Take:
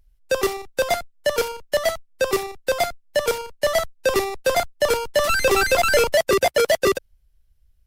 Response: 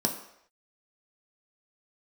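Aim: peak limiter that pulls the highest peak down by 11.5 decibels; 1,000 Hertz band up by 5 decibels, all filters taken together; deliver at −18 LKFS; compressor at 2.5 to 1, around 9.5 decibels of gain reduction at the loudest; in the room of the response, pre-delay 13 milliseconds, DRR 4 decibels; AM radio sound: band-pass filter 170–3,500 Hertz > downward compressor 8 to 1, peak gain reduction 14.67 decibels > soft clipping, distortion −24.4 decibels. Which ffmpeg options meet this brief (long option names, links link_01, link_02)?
-filter_complex "[0:a]equalizer=frequency=1000:width_type=o:gain=7.5,acompressor=threshold=-27dB:ratio=2.5,alimiter=limit=-23dB:level=0:latency=1,asplit=2[link_01][link_02];[1:a]atrim=start_sample=2205,adelay=13[link_03];[link_02][link_03]afir=irnorm=-1:irlink=0,volume=-12dB[link_04];[link_01][link_04]amix=inputs=2:normalize=0,highpass=170,lowpass=3500,acompressor=threshold=-37dB:ratio=8,asoftclip=threshold=-29dB,volume=23.5dB"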